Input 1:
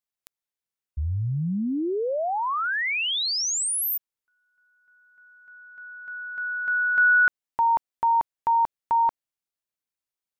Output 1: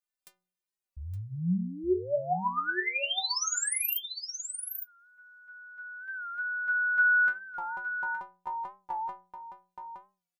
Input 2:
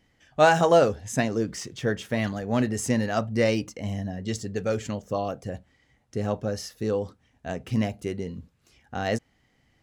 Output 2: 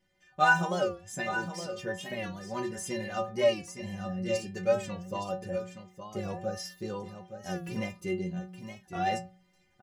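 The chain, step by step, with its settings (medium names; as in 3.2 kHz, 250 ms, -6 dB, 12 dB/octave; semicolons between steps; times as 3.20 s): on a send: delay 867 ms -9.5 dB; on the sum: gain riding within 4 dB 2 s; peaking EQ 96 Hz +6.5 dB 0.42 oct; hum notches 60/120/180 Hz; inharmonic resonator 180 Hz, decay 0.36 s, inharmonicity 0.008; warped record 45 rpm, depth 100 cents; trim +7 dB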